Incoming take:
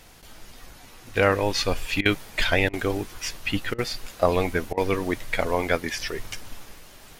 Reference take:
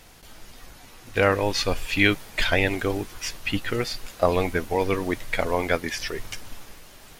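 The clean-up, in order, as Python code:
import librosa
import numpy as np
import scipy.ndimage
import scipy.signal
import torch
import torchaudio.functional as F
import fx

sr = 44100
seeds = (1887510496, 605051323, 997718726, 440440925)

y = fx.fix_interpolate(x, sr, at_s=(2.01, 2.69, 3.74, 4.73), length_ms=43.0)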